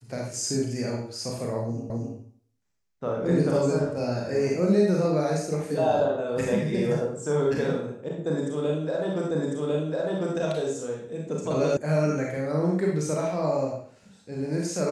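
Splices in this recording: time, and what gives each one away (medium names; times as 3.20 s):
1.90 s: repeat of the last 0.26 s
9.31 s: repeat of the last 1.05 s
11.77 s: sound stops dead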